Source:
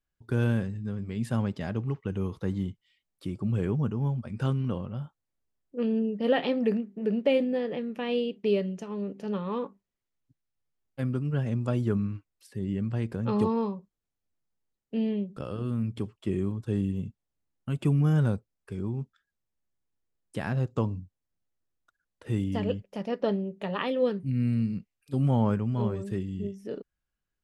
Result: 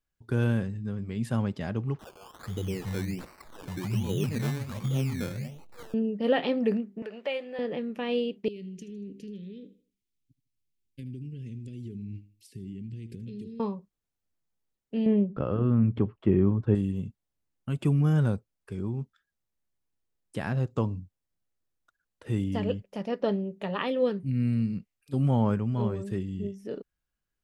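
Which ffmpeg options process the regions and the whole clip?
ffmpeg -i in.wav -filter_complex "[0:a]asettb=1/sr,asplit=3[link_01][link_02][link_03];[link_01]atrim=end=1.994[link_04];[link_02]atrim=start=1.99:end=5.94,asetpts=PTS-STARTPTS,afade=type=in:duration=0.004:curve=qsin,afade=type=out:start_time=3.946:duration=0.004:curve=qsin,aeval=exprs='val(0)+0.5*0.00841*sgn(val(0))':channel_layout=same,acrossover=split=180|780[link_05][link_06][link_07];[link_05]adelay=420[link_08];[link_06]adelay=510[link_09];[link_08][link_09][link_07]amix=inputs=3:normalize=0,atrim=end_sample=174195,acrusher=samples=18:mix=1:aa=0.000001:lfo=1:lforange=10.8:lforate=1.3[link_10];[link_03]atrim=start=5.936[link_11];[link_04][link_10]acrossfade=duration=0.004:curve1=hsin:curve2=qsin[link_12];[link_12][link_11]acrossfade=duration=0.004:curve1=qsin:curve2=hsin,asettb=1/sr,asplit=3[link_13][link_14][link_15];[link_13]atrim=end=7.024[link_16];[link_14]atrim=start=7.02:end=7.59,asetpts=PTS-STARTPTS,afade=type=in:duration=0.004:curve=qsin,afade=type=out:start_time=0.566:duration=0.004:curve=qsin,highpass=840,aemphasis=mode=reproduction:type=cd,acompressor=mode=upward:threshold=-34dB:ratio=2.5:attack=3.2:release=140:knee=2.83:detection=peak[link_17];[link_15]atrim=start=7.586[link_18];[link_16][link_17]acrossfade=duration=0.004:curve1=hsin:curve2=qsin[link_19];[link_19][link_18]acrossfade=duration=0.004:curve1=qsin:curve2=hsin,asettb=1/sr,asplit=3[link_20][link_21][link_22];[link_20]atrim=end=8.484[link_23];[link_21]atrim=start=8.48:end=13.6,asetpts=PTS-STARTPTS,afade=type=in:duration=0.004:curve=qsin,afade=type=out:start_time=5.116:duration=0.004:curve=qsin,acompressor=threshold=-35dB:ratio=8:attack=3.2:release=140:knee=1:detection=peak,asuperstop=centerf=950:order=8:qfactor=0.52,aecho=1:1:78|156|234:0.158|0.0586|0.0217,atrim=end_sample=225792[link_24];[link_22]atrim=start=13.596[link_25];[link_23][link_24]acrossfade=duration=0.004:curve1=hsin:curve2=qsin[link_26];[link_26][link_25]acrossfade=duration=0.004:curve1=qsin:curve2=hsin,asettb=1/sr,asplit=3[link_27][link_28][link_29];[link_27]atrim=end=15.064[link_30];[link_28]atrim=start=15.06:end=16.75,asetpts=PTS-STARTPTS,afade=type=in:duration=0.004:curve=qsin,afade=type=out:start_time=1.686:duration=0.004:curve=qsin,lowpass=1700,acontrast=75[link_31];[link_29]atrim=start=16.746[link_32];[link_30][link_31]acrossfade=duration=0.004:curve1=hsin:curve2=qsin[link_33];[link_33][link_32]acrossfade=duration=0.004:curve1=qsin:curve2=hsin" out.wav

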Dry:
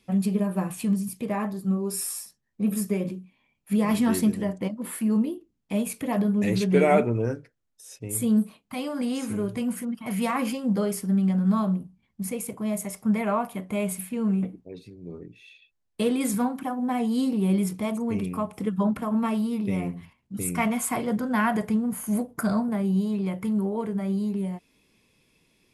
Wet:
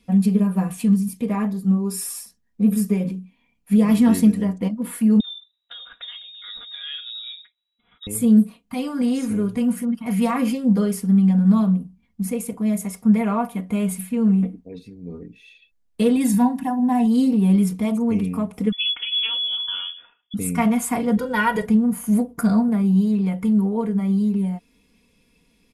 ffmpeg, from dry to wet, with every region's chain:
ffmpeg -i in.wav -filter_complex "[0:a]asettb=1/sr,asplit=3[link_01][link_02][link_03];[link_01]atrim=end=5.204[link_04];[link_02]atrim=start=5.2:end=8.07,asetpts=PTS-STARTPTS,afade=type=in:duration=0.004:curve=qsin,afade=type=out:start_time=2.866:duration=0.004:curve=qsin,lowpass=frequency=3300:width_type=q:width=0.5098,lowpass=frequency=3300:width_type=q:width=0.6013,lowpass=frequency=3300:width_type=q:width=0.9,lowpass=frequency=3300:width_type=q:width=2.563,afreqshift=-3900,acompressor=threshold=-36dB:ratio=3:attack=3.2:release=140:knee=1:detection=peak[link_05];[link_03]atrim=start=8.066[link_06];[link_04][link_05]acrossfade=duration=0.004:curve1=hsin:curve2=qsin[link_07];[link_07][link_06]acrossfade=duration=0.004:curve1=qsin:curve2=hsin,asettb=1/sr,asplit=3[link_08][link_09][link_10];[link_08]atrim=end=16.164[link_11];[link_09]atrim=start=16.16:end=17.06,asetpts=PTS-STARTPTS,afade=type=in:duration=0.004:curve=qsin,afade=type=out:start_time=0.896:duration=0.004:curve=qsin,highpass=42,bandreject=frequency=1200:width=7.2,aecho=1:1:1.1:0.6,atrim=end_sample=39690[link_12];[link_10]atrim=start=17.056[link_13];[link_11][link_12]acrossfade=duration=0.004:curve1=hsin:curve2=qsin[link_14];[link_14][link_13]acrossfade=duration=0.004:curve1=qsin:curve2=hsin,asettb=1/sr,asplit=3[link_15][link_16][link_17];[link_15]atrim=end=18.724[link_18];[link_16]atrim=start=18.72:end=20.34,asetpts=PTS-STARTPTS,afade=type=in:duration=0.004:curve=qsin,afade=type=out:start_time=1.616:duration=0.004:curve=qsin,highpass=180,lowpass=frequency=3100:width_type=q:width=0.5098,lowpass=frequency=3100:width_type=q:width=0.6013,lowpass=frequency=3100:width_type=q:width=0.9,lowpass=frequency=3100:width_type=q:width=2.563,afreqshift=-3600[link_19];[link_17]atrim=start=20.336[link_20];[link_18][link_19]acrossfade=duration=0.004:curve1=hsin:curve2=qsin[link_21];[link_21][link_20]acrossfade=duration=0.004:curve1=qsin:curve2=hsin,asettb=1/sr,asplit=3[link_22][link_23][link_24];[link_22]atrim=end=21.174[link_25];[link_23]atrim=start=21.17:end=21.66,asetpts=PTS-STARTPTS,afade=type=in:duration=0.004:curve=qsin,afade=type=out:start_time=0.486:duration=0.004:curve=qsin,equalizer=frequency=3300:width=1.4:gain=6,aecho=1:1:2.1:0.76,atrim=end_sample=21609[link_26];[link_24]atrim=start=21.656[link_27];[link_25][link_26]acrossfade=duration=0.004:curve1=hsin:curve2=qsin[link_28];[link_28][link_27]acrossfade=duration=0.004:curve1=qsin:curve2=hsin,lowshelf=frequency=210:gain=8,aecho=1:1:4.2:0.62" out.wav

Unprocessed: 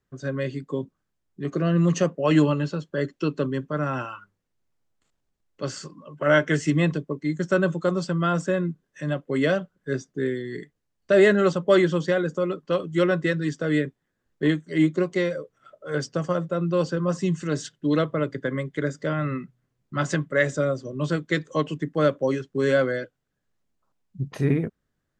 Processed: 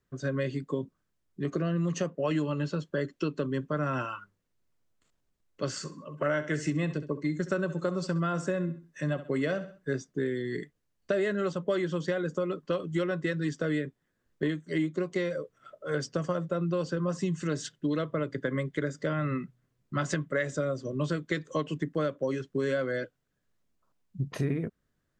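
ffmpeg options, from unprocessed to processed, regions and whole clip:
ffmpeg -i in.wav -filter_complex "[0:a]asettb=1/sr,asplit=3[link_01][link_02][link_03];[link_01]atrim=end=5.784[link_04];[link_02]atrim=start=5.78:end=9.98,asetpts=PTS-STARTPTS,afade=type=in:duration=0.004:curve=qsin,afade=type=out:start_time=4.196:duration=0.004:curve=qsin,bandreject=frequency=3200:width=13,aecho=1:1:66|132|198:0.178|0.0551|0.0171,atrim=end_sample=185220[link_05];[link_03]atrim=start=9.976[link_06];[link_04][link_05]acrossfade=duration=0.004:curve1=hsin:curve2=qsin[link_07];[link_07][link_06]acrossfade=duration=0.004:curve1=qsin:curve2=hsin,bandreject=frequency=810:width=12,acompressor=threshold=-26dB:ratio=6" out.wav

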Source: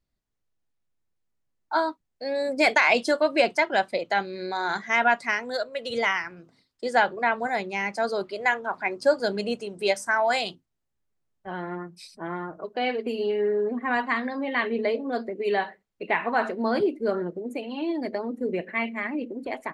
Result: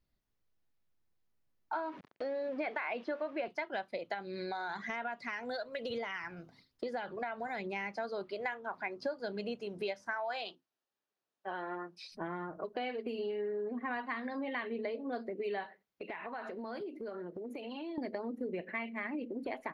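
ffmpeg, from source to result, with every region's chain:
ffmpeg -i in.wav -filter_complex "[0:a]asettb=1/sr,asplit=3[link_01][link_02][link_03];[link_01]atrim=end=1.734[link_04];[link_02]atrim=start=1.73:end=3.48,asetpts=PTS-STARTPTS,afade=type=in:duration=0.004:curve=qsin,afade=type=out:start_time=1.746:duration=0.004:curve=qsin,aeval=exprs='val(0)+0.5*0.02*sgn(val(0))':channel_layout=same,highpass=190,lowpass=2300[link_05];[link_03]atrim=start=3.476[link_06];[link_04][link_05]acrossfade=duration=0.004:curve1=hsin:curve2=qsin[link_07];[link_07][link_06]acrossfade=duration=0.004:curve1=qsin:curve2=hsin,asettb=1/sr,asplit=3[link_08][link_09][link_10];[link_08]atrim=end=4.144[link_11];[link_09]atrim=start=4.14:end=7.76,asetpts=PTS-STARTPTS,afade=type=in:duration=0.004:curve=qsin,afade=type=out:start_time=3.616:duration=0.004:curve=qsin,aphaser=in_gain=1:out_gain=1:delay=1.4:decay=0.39:speed=1.1:type=sinusoidal,acompressor=threshold=-31dB:ratio=2:attack=3.2:release=140:knee=1:detection=peak[link_12];[link_10]atrim=start=7.756[link_13];[link_11][link_12]acrossfade=duration=0.004:curve1=hsin:curve2=qsin[link_14];[link_14][link_13]acrossfade=duration=0.004:curve1=qsin:curve2=hsin,asettb=1/sr,asplit=3[link_15][link_16][link_17];[link_15]atrim=end=10.134[link_18];[link_16]atrim=start=10.13:end=12.12,asetpts=PTS-STARTPTS,afade=type=in:duration=0.004:curve=qsin,afade=type=out:start_time=1.986:duration=0.004:curve=qsin,highpass=390,lowpass=7200,bandreject=frequency=2100:width=11[link_19];[link_17]atrim=start=12.116[link_20];[link_18][link_19]acrossfade=duration=0.004:curve1=hsin:curve2=qsin[link_21];[link_21][link_20]acrossfade=duration=0.004:curve1=qsin:curve2=hsin,asettb=1/sr,asplit=3[link_22][link_23][link_24];[link_22]atrim=end=15.664[link_25];[link_23]atrim=start=15.66:end=17.98,asetpts=PTS-STARTPTS,afade=type=in:duration=0.004:curve=qsin,afade=type=out:start_time=2.316:duration=0.004:curve=qsin,highpass=frequency=240:poles=1,acompressor=threshold=-39dB:ratio=6:attack=3.2:release=140:knee=1:detection=peak[link_26];[link_24]atrim=start=17.976[link_27];[link_25][link_26]acrossfade=duration=0.004:curve1=hsin:curve2=qsin[link_28];[link_28][link_27]acrossfade=duration=0.004:curve1=qsin:curve2=hsin,acrossover=split=5100[link_29][link_30];[link_30]acompressor=threshold=-59dB:ratio=4:attack=1:release=60[link_31];[link_29][link_31]amix=inputs=2:normalize=0,equalizer=frequency=8100:width=3.2:gain=-13.5,acompressor=threshold=-36dB:ratio=5" out.wav

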